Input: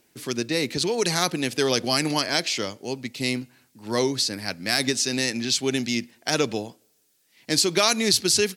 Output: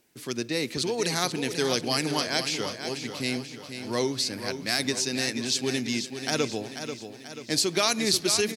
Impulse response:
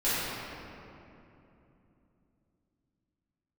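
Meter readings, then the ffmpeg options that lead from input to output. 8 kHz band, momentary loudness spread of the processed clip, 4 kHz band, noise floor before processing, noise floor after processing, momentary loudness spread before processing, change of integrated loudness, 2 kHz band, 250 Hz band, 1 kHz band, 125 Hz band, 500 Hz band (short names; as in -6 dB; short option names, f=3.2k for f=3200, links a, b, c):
-3.5 dB, 12 LU, -3.5 dB, -66 dBFS, -44 dBFS, 11 LU, -3.5 dB, -3.0 dB, -3.0 dB, -3.0 dB, -3.0 dB, -3.5 dB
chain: -filter_complex "[0:a]aecho=1:1:487|974|1461|1948|2435|2922:0.355|0.185|0.0959|0.0499|0.0259|0.0135,asplit=2[a][b];[1:a]atrim=start_sample=2205,asetrate=57330,aresample=44100[c];[b][c]afir=irnorm=-1:irlink=0,volume=-33.5dB[d];[a][d]amix=inputs=2:normalize=0,volume=-4dB"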